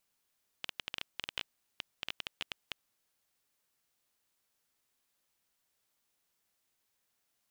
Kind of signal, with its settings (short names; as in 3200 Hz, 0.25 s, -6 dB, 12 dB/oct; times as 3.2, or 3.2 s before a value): random clicks 10/s -18.5 dBFS 2.37 s